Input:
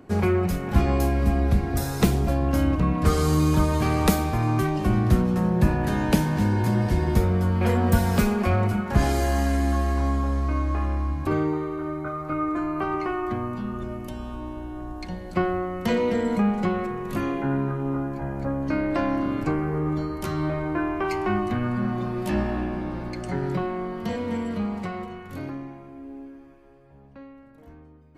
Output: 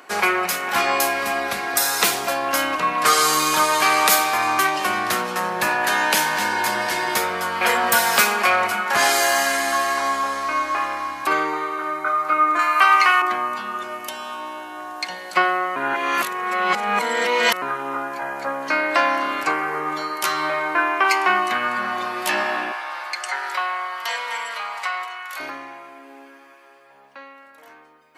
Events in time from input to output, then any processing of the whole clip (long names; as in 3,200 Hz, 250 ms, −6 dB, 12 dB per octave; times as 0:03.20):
0:12.59–0:13.22: tilt shelving filter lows −10 dB, about 800 Hz
0:15.76–0:17.62: reverse
0:22.72–0:25.40: Chebyshev high-pass filter 920 Hz
whole clip: high-pass filter 1,100 Hz 12 dB per octave; boost into a limiter +16.5 dB; level −1 dB